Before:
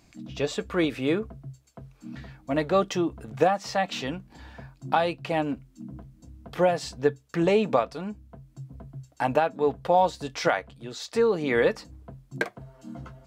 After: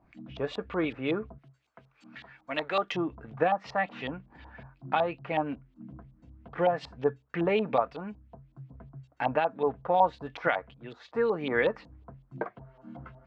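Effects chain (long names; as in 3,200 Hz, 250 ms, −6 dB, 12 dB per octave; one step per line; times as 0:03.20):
tape wow and flutter 20 cents
0:01.38–0:02.92: spectral tilt +4 dB per octave
auto-filter low-pass saw up 5.4 Hz 810–3,500 Hz
level −5.5 dB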